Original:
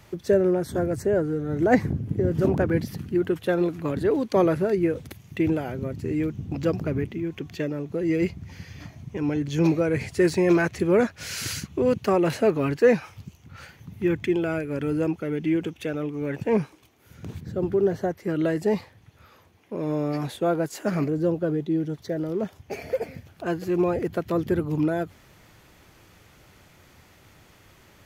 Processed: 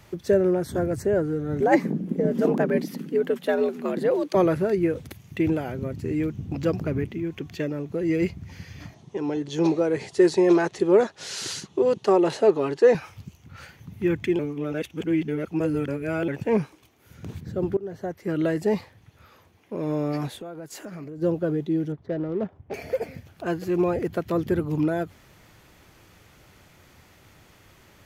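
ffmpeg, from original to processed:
-filter_complex "[0:a]asettb=1/sr,asplit=3[a][b][c];[a]atrim=end=1.604[d];[b]atrim=start=1.6:end=4.35,asetpts=PTS-STARTPTS,afade=t=in:d=0.004:c=qsin,afade=t=out:st=2.746:d=0.004:c=qsin,afreqshift=74[e];[c]atrim=start=4.346[f];[d][e]acrossfade=d=0.004:c1=hsin:c2=qsin[g];[g][f]acrossfade=d=0.004:c1=qsin:c2=hsin,asettb=1/sr,asplit=3[h][i][j];[h]atrim=end=8.944[k];[i]atrim=start=8.94:end=12.95,asetpts=PTS-STARTPTS,afade=t=in:d=0.004:c=qsin,afade=t=out:st=4.006:d=0.004:c=qsin,highpass=220,equalizer=f=250:t=q:w=4:g=-6,equalizer=f=390:t=q:w=4:g=6,equalizer=f=860:t=q:w=4:g=5,equalizer=f=1.5k:t=q:w=4:g=-4,equalizer=f=2.3k:t=q:w=4:g=-8,equalizer=f=3.7k:t=q:w=4:g=4,lowpass=f=9.4k:w=0.5412,lowpass=f=9.4k:w=1.3066[l];[j]atrim=start=12.946[m];[k][l]acrossfade=d=0.004:c1=hsin:c2=qsin[n];[n][m]acrossfade=d=0.004:c1=qsin:c2=hsin,asplit=3[o][p][q];[o]afade=t=out:st=20.28:d=0.02[r];[p]acompressor=threshold=-35dB:ratio=6:attack=3.2:release=140:knee=1:detection=peak,afade=t=in:st=20.28:d=0.02,afade=t=out:st=21.21:d=0.02[s];[q]afade=t=in:st=21.21:d=0.02[t];[r][s][t]amix=inputs=3:normalize=0,asettb=1/sr,asplit=3[u][v][w];[u]atrim=end=21.924[x];[v]atrim=start=21.92:end=22.74,asetpts=PTS-STARTPTS,afade=t=in:d=0.004:c=qsin,afade=t=out:st=0.816:d=0.004:c=qsin,adynamicsmooth=sensitivity=3.5:basefreq=1k[y];[w]atrim=start=22.736[z];[x][y]acrossfade=d=0.004:c1=hsin:c2=qsin[aa];[aa][z]acrossfade=d=0.004:c1=qsin:c2=hsin,asplit=4[ab][ac][ad][ae];[ab]atrim=end=14.392[af];[ac]atrim=start=14.388:end=16.282,asetpts=PTS-STARTPTS,areverse[ag];[ad]atrim=start=16.278:end=17.77,asetpts=PTS-STARTPTS,afade=t=out:st=1.488:d=0.004:c=hsin:silence=0.0891251[ah];[ae]atrim=start=17.77,asetpts=PTS-STARTPTS,afade=t=in:d=0.56:silence=0.0891251[ai];[af][ag]acrossfade=d=0.004:c1=hsin:c2=hsin[aj];[ah][ai]concat=n=2:v=0:a=1[ak];[aj][ak]acrossfade=d=0.004:c1=hsin:c2=hsin"

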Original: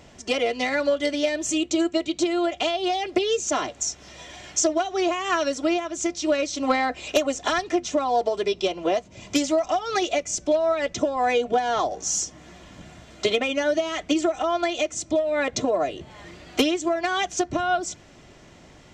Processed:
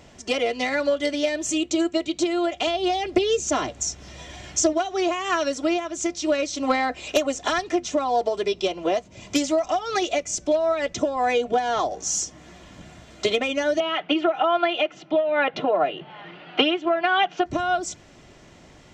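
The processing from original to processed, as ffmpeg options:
-filter_complex "[0:a]asettb=1/sr,asplit=3[a][b][c];[a]atrim=end=2.674[d];[b]atrim=start=2.67:end=4.73,asetpts=PTS-STARTPTS,afade=t=in:d=0.004:c=qsin,afade=t=out:st=2.056:d=0.004:c=qsin,lowshelf=f=200:g=10[e];[c]atrim=start=4.726[f];[d][e]acrossfade=d=0.004:c1=hsin:c2=qsin[g];[g][f]acrossfade=d=0.004:c1=qsin:c2=hsin,asettb=1/sr,asplit=3[h][i][j];[h]atrim=end=13.804[k];[i]atrim=start=13.8:end=17.46,asetpts=PTS-STARTPTS,afade=t=in:d=0.004:c=qsin,afade=t=out:st=3.656:d=0.004:c=qsin,highpass=f=160:w=0.5412,highpass=f=160:w=1.3066,equalizer=f=160:t=q:w=4:g=7,equalizer=f=230:t=q:w=4:g=-7,equalizer=f=820:t=q:w=4:g=8,equalizer=f=1.4k:t=q:w=4:g=7,equalizer=f=2.9k:t=q:w=4:g=8,lowpass=f=3.5k:w=0.5412,lowpass=f=3.5k:w=1.3066[l];[j]atrim=start=17.456[m];[k][l]acrossfade=d=0.004:c1=hsin:c2=qsin[n];[n][m]acrossfade=d=0.004:c1=qsin:c2=hsin"

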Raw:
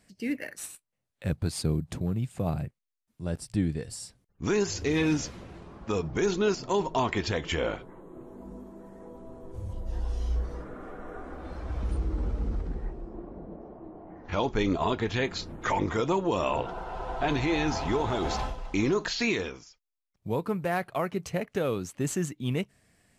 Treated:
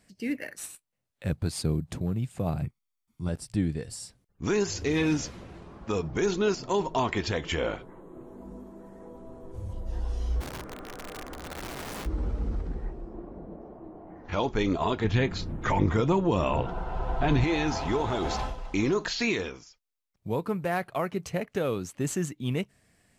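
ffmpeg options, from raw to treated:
-filter_complex "[0:a]asettb=1/sr,asplit=3[a][b][c];[a]atrim=end=2.624[d];[b]atrim=start=2.62:end=3.29,asetpts=PTS-STARTPTS,afade=t=in:d=0.004:c=qsin,afade=t=out:st=0.666:d=0.004:c=qsin,aecho=1:1:0.9:0.65,atrim=end_sample=29547[e];[c]atrim=start=3.286[f];[d][e]acrossfade=d=0.004:c1=hsin:c2=qsin[g];[g][f]acrossfade=d=0.004:c1=qsin:c2=hsin,asplit=3[h][i][j];[h]afade=t=out:st=10.4:d=0.02[k];[i]aeval=exprs='(mod(44.7*val(0)+1,2)-1)/44.7':c=same,afade=t=in:st=10.4:d=0.02,afade=t=out:st=12.05:d=0.02[l];[j]afade=t=in:st=12.05:d=0.02[m];[k][l][m]amix=inputs=3:normalize=0,asettb=1/sr,asplit=3[n][o][p];[n]atrim=end=15.044[q];[o]atrim=start=15.04:end=17.44,asetpts=PTS-STARTPTS,afade=t=in:d=0.004:c=qsin,afade=t=out:st=2.396:d=0.004:c=qsin,bass=f=250:g=9,treble=f=4k:g=-4[r];[p]atrim=start=17.436[s];[q][r]acrossfade=d=0.004:c1=hsin:c2=qsin[t];[t][s]acrossfade=d=0.004:c1=qsin:c2=hsin"

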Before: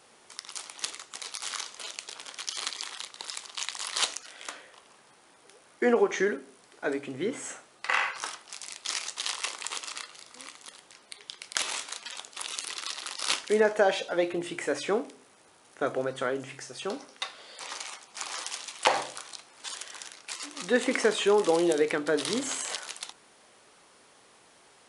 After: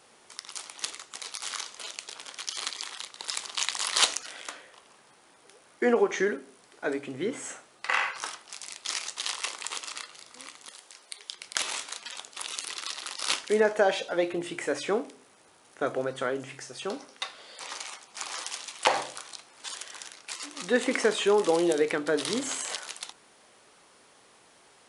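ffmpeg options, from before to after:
-filter_complex "[0:a]asettb=1/sr,asplit=3[a][b][c];[a]atrim=end=3.284[d];[b]atrim=start=3.28:end=4.41,asetpts=PTS-STARTPTS,afade=t=in:d=0.004:c=qsin,afade=t=out:st=1.126:d=0.004:c=qsin,acontrast=29[e];[c]atrim=start=4.406[f];[d][e]acrossfade=d=0.004:c1=hsin:c2=qsin[g];[g][f]acrossfade=d=0.004:c1=qsin:c2=hsin,asettb=1/sr,asplit=3[h][i][j];[h]atrim=end=10.704[k];[i]atrim=start=10.7:end=11.35,asetpts=PTS-STARTPTS,afade=t=in:d=0.004:c=qsin,afade=t=out:st=0.646:d=0.004:c=qsin,bass=f=250:g=-14,treble=f=4k:g=5[l];[j]atrim=start=11.346[m];[k][l]acrossfade=d=0.004:c1=hsin:c2=qsin[n];[n][m]acrossfade=d=0.004:c1=qsin:c2=hsin"

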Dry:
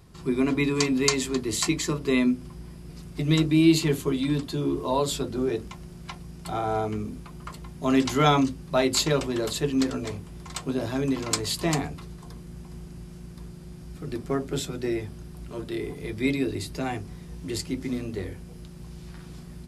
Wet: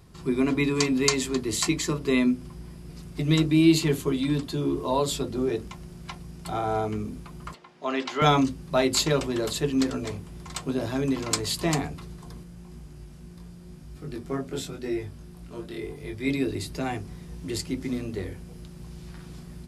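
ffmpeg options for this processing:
-filter_complex "[0:a]asettb=1/sr,asplit=3[a][b][c];[a]atrim=end=5.064[d];[b]atrim=start=5.06:end=5.51,asetpts=PTS-STARTPTS,afade=t=in:d=0.004:c=qsin,afade=t=out:st=0.446:d=0.004:c=qsin,bandreject=f=1.5k:w=12[e];[c]atrim=start=5.506[f];[d][e]acrossfade=d=0.004:c1=hsin:c2=qsin[g];[g][f]acrossfade=d=0.004:c1=qsin:c2=hsin,asettb=1/sr,asplit=3[h][i][j];[h]atrim=end=7.544[k];[i]atrim=start=7.54:end=8.22,asetpts=PTS-STARTPTS,afade=t=in:d=0.004:c=qsin,afade=t=out:st=0.676:d=0.004:c=qsin,highpass=470,lowpass=3.9k[l];[j]atrim=start=8.216[m];[k][l]acrossfade=d=0.004:c1=hsin:c2=qsin[n];[n][m]acrossfade=d=0.004:c1=qsin:c2=hsin,asplit=3[o][p][q];[o]afade=t=out:st=12.43:d=0.02[r];[p]flanger=delay=20:depth=3.4:speed=1,afade=t=in:st=12.43:d=0.02,afade=t=out:st=16.29:d=0.02[s];[q]afade=t=in:st=16.29:d=0.02[t];[r][s][t]amix=inputs=3:normalize=0"

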